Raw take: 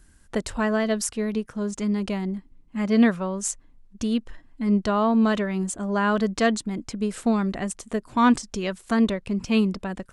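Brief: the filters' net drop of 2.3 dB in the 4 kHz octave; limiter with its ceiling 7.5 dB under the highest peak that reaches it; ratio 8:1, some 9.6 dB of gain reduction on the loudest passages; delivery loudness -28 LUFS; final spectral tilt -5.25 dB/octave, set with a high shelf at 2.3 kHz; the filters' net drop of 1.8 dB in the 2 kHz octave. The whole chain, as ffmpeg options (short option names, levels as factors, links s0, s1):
-af "equalizer=f=2000:t=o:g=-3,highshelf=f=2300:g=3.5,equalizer=f=4000:t=o:g=-5.5,acompressor=threshold=0.0708:ratio=8,volume=1.41,alimiter=limit=0.112:level=0:latency=1"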